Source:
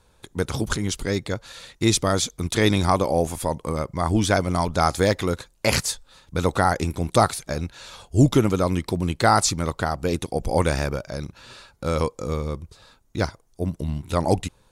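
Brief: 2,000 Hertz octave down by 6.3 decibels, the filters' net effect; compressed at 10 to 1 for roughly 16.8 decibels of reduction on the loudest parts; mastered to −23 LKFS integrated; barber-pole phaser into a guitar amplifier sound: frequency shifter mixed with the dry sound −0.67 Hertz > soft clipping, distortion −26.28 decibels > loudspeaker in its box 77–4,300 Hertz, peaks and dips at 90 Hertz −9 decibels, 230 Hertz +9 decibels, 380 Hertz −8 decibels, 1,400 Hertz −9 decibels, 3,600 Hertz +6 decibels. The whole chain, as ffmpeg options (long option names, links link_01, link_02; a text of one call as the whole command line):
ffmpeg -i in.wav -filter_complex "[0:a]equalizer=frequency=2000:width_type=o:gain=-4.5,acompressor=threshold=-29dB:ratio=10,asplit=2[link_01][link_02];[link_02]afreqshift=-0.67[link_03];[link_01][link_03]amix=inputs=2:normalize=1,asoftclip=threshold=-22dB,highpass=77,equalizer=frequency=90:width_type=q:width=4:gain=-9,equalizer=frequency=230:width_type=q:width=4:gain=9,equalizer=frequency=380:width_type=q:width=4:gain=-8,equalizer=frequency=1400:width_type=q:width=4:gain=-9,equalizer=frequency=3600:width_type=q:width=4:gain=6,lowpass=frequency=4300:width=0.5412,lowpass=frequency=4300:width=1.3066,volume=16dB" out.wav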